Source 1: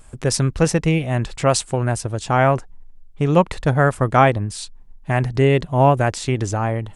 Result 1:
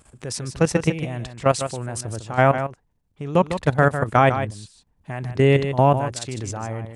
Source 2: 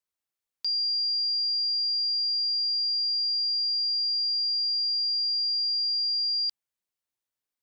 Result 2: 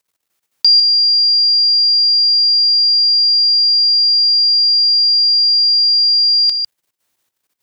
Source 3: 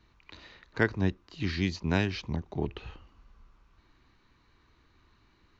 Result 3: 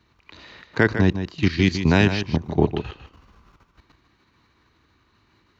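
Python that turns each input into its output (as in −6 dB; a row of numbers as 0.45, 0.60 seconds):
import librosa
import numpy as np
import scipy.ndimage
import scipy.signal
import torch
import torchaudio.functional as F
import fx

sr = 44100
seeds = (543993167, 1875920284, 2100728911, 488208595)

p1 = fx.level_steps(x, sr, step_db=15)
p2 = scipy.signal.sosfilt(scipy.signal.butter(2, 70.0, 'highpass', fs=sr, output='sos'), p1)
p3 = p2 + fx.echo_single(p2, sr, ms=152, db=-9.5, dry=0)
y = p3 * 10.0 ** (-3 / 20.0) / np.max(np.abs(p3))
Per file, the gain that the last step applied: +1.0, +21.5, +15.0 decibels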